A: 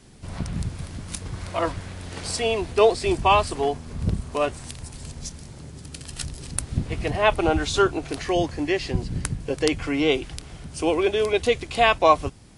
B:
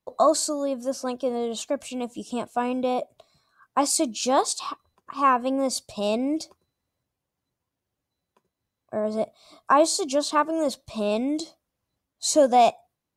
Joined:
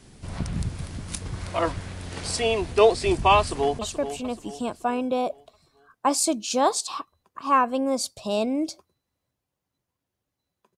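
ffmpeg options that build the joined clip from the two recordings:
-filter_complex "[0:a]apad=whole_dur=10.77,atrim=end=10.77,atrim=end=3.792[s0];[1:a]atrim=start=1.508:end=8.49[s1];[s0][s1]acrossfade=d=0.004:c1=hsin:c2=hsin,asplit=2[s2][s3];[s3]afade=t=in:st=3.38:d=0.01,afade=t=out:st=3.79:d=0.01,aecho=0:1:430|860|1290|1720|2150:0.316228|0.142302|0.0640361|0.0288163|0.0129673[s4];[s2][s4]amix=inputs=2:normalize=0"

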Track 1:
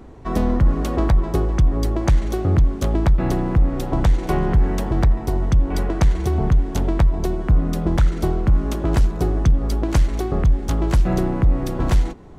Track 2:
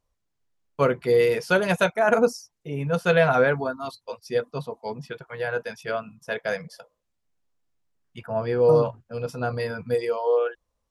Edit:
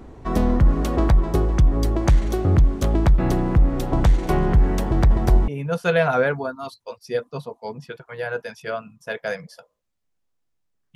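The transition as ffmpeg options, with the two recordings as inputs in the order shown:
-filter_complex "[0:a]asettb=1/sr,asplit=3[s0][s1][s2];[s0]atrim=end=4.854[s3];[s1]atrim=start=4.85:end=5.48,asetpts=PTS-STARTPTS,afade=t=in:d=0.004:c=qsin,afade=t=out:st=0.626:d=0.004:c=qsin,aecho=1:1:250:0.668,atrim=end_sample=27783[s4];[s2]atrim=start=5.476[s5];[s3][s4]acrossfade=d=0.004:c1=hsin:c2=qsin[s6];[s6][s5]acrossfade=d=0.004:c1=qsin:c2=hsin,apad=whole_dur=10.95,atrim=end=10.95,atrim=end=5.482[s7];[1:a]atrim=start=2.688:end=8.16[s8];[s7][s8]acrossfade=d=0.004:c1=hsin:c2=hsin"

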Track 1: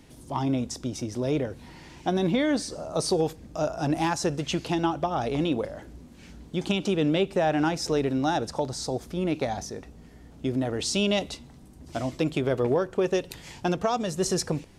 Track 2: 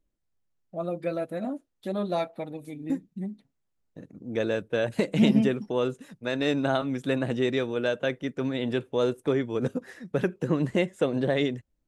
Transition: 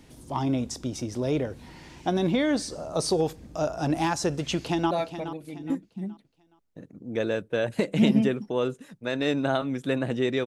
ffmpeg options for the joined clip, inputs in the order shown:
-filter_complex "[0:a]apad=whole_dur=10.46,atrim=end=10.46,atrim=end=4.912[s0];[1:a]atrim=start=2.108:end=7.66[s1];[s0][s1]acrossfade=d=0.004:c1=hsin:c2=hsin,asplit=2[s2][s3];[s3]afade=t=in:st=4.56:d=0.01,afade=t=out:st=4.91:d=0.01,aecho=0:1:420|840|1260|1680:0.281838|0.0986434|0.0345252|0.0120838[s4];[s2][s4]amix=inputs=2:normalize=0"

